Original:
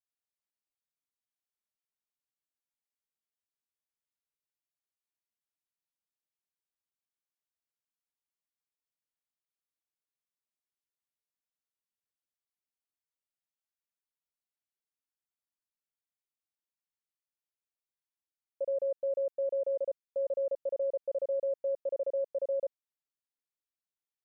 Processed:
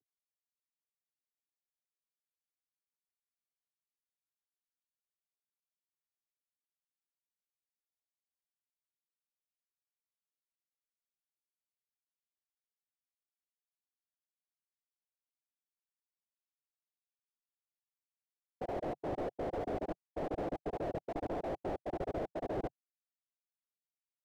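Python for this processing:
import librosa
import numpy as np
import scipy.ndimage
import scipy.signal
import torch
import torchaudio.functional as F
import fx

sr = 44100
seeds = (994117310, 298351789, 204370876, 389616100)

y = fx.cvsd(x, sr, bps=32000)
y = fx.rider(y, sr, range_db=10, speed_s=2.0)
y = fx.noise_vocoder(y, sr, seeds[0], bands=8)
y = scipy.signal.sosfilt(scipy.signal.ellip(4, 1.0, 40, 750.0, 'lowpass', fs=sr, output='sos'), y)
y = fx.slew_limit(y, sr, full_power_hz=5.4)
y = F.gain(torch.from_numpy(y), 4.5).numpy()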